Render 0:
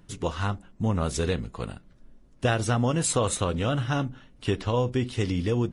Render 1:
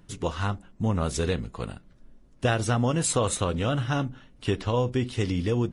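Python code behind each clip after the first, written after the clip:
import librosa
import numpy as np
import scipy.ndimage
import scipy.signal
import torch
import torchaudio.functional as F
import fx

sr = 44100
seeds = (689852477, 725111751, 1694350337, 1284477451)

y = x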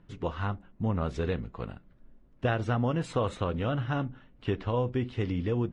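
y = scipy.signal.sosfilt(scipy.signal.butter(2, 2600.0, 'lowpass', fs=sr, output='sos'), x)
y = y * 10.0 ** (-3.5 / 20.0)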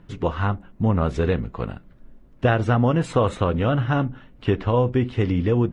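y = fx.dynamic_eq(x, sr, hz=4500.0, q=0.96, threshold_db=-55.0, ratio=4.0, max_db=-4)
y = y * 10.0 ** (9.0 / 20.0)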